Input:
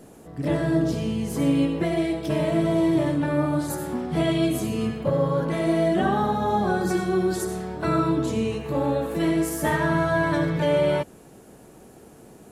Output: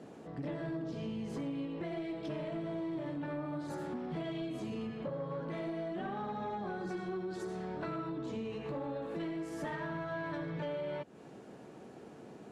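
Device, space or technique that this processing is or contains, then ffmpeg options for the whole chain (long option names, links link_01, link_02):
AM radio: -af "highpass=130,lowpass=4300,acompressor=threshold=-33dB:ratio=6,asoftclip=type=tanh:threshold=-28dB,volume=-2.5dB"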